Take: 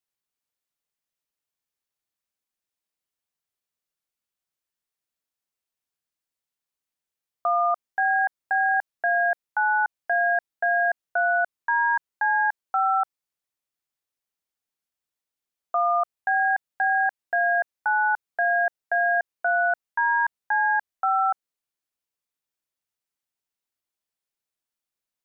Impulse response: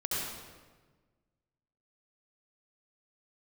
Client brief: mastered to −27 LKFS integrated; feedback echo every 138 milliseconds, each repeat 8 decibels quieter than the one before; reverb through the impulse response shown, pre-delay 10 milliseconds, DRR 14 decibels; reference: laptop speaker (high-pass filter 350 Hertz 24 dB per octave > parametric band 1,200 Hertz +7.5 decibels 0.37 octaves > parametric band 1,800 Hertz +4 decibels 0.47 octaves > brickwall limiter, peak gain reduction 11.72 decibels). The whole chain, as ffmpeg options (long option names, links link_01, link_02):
-filter_complex "[0:a]aecho=1:1:138|276|414|552|690:0.398|0.159|0.0637|0.0255|0.0102,asplit=2[link_01][link_02];[1:a]atrim=start_sample=2205,adelay=10[link_03];[link_02][link_03]afir=irnorm=-1:irlink=0,volume=-20dB[link_04];[link_01][link_04]amix=inputs=2:normalize=0,highpass=frequency=350:width=0.5412,highpass=frequency=350:width=1.3066,equalizer=frequency=1200:width_type=o:width=0.37:gain=7.5,equalizer=frequency=1800:width_type=o:width=0.47:gain=4,volume=-0.5dB,alimiter=limit=-20.5dB:level=0:latency=1"